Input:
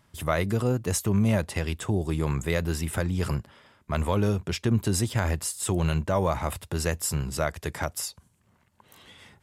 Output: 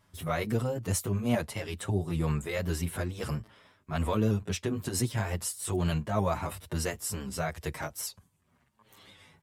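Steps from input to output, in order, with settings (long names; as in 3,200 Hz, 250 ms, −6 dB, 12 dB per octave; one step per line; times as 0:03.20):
pitch shifter swept by a sawtooth +1.5 semitones, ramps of 269 ms
barber-pole flanger 7.4 ms −1.1 Hz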